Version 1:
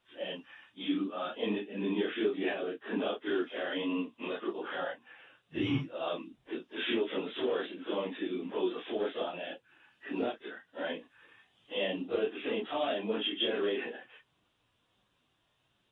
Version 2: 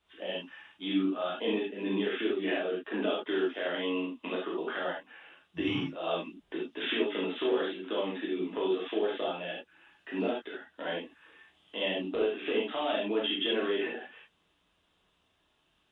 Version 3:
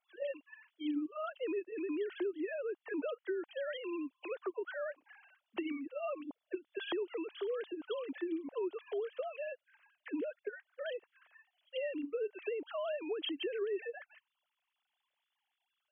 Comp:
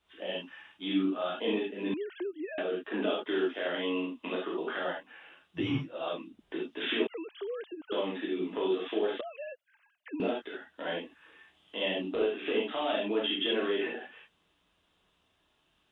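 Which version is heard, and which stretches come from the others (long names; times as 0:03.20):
2
0:01.94–0:02.58: punch in from 3
0:05.60–0:06.39: punch in from 1
0:07.07–0:07.92: punch in from 3
0:09.21–0:10.20: punch in from 3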